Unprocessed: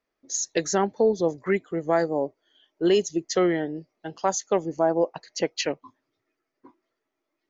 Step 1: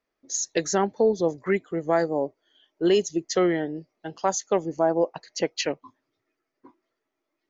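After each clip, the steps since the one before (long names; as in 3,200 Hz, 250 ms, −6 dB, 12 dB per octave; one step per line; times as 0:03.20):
no processing that can be heard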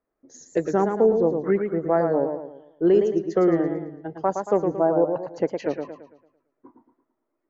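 drawn EQ curve 420 Hz 0 dB, 1,400 Hz −4 dB, 3,500 Hz −22 dB
feedback echo with a swinging delay time 112 ms, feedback 42%, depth 117 cents, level −6 dB
level +2.5 dB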